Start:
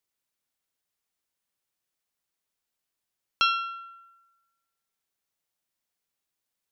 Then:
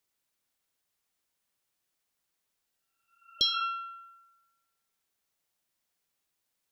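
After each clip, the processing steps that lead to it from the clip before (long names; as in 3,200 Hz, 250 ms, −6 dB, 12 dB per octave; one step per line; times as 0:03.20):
healed spectral selection 0:02.75–0:03.59, 610–3,100 Hz both
level +3 dB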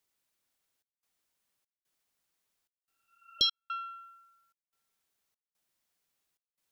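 gate pattern "xxxx.xxx." 73 BPM −60 dB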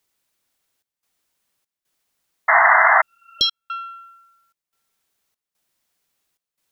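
sound drawn into the spectrogram noise, 0:02.48–0:03.02, 620–2,100 Hz −21 dBFS
level +8 dB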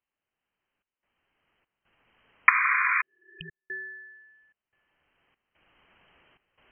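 camcorder AGC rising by 12 dB per second
voice inversion scrambler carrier 3,100 Hz
level −11 dB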